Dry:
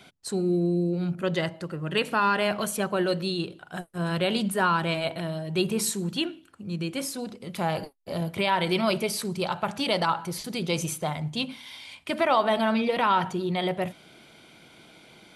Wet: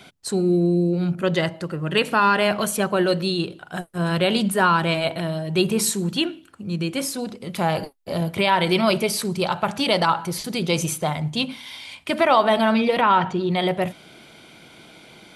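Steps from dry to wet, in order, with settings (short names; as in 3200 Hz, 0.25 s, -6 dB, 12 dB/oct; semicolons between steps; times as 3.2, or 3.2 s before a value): 13–13.49 LPF 2600 Hz -> 5700 Hz 12 dB/oct; gain +5.5 dB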